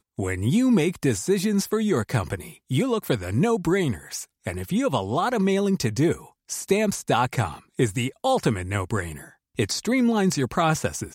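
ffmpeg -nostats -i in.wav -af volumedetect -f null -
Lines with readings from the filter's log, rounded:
mean_volume: -23.9 dB
max_volume: -8.0 dB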